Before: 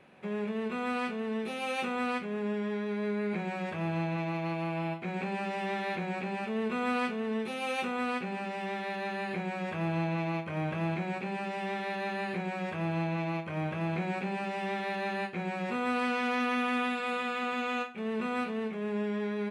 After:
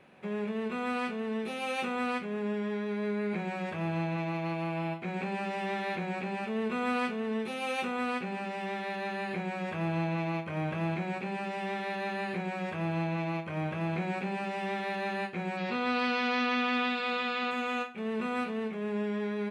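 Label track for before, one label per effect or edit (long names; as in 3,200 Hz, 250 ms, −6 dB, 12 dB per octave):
15.570000	17.510000	low-pass with resonance 4,500 Hz, resonance Q 2.4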